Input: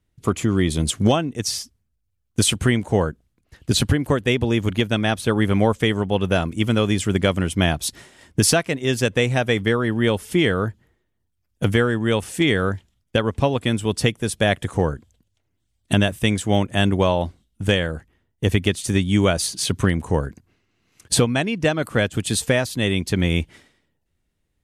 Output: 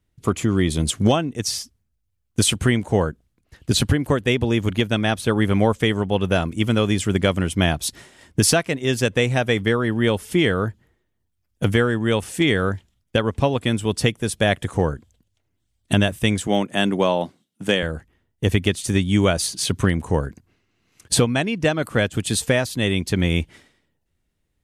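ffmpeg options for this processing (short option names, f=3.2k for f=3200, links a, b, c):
-filter_complex "[0:a]asettb=1/sr,asplit=3[a][b][c];[a]atrim=end=16.474[d];[b]atrim=start=16.47:end=17.83,asetpts=PTS-STARTPTS,afade=t=in:d=0.004:c=qsin,afade=t=out:st=1.356:d=0.004:c=qsin,highpass=f=160:w=0.5412,highpass=f=160:w=1.3066[e];[c]atrim=start=17.826[f];[d][e]acrossfade=d=0.004:c1=hsin:c2=qsin[g];[g][f]acrossfade=d=0.004:c1=qsin:c2=hsin"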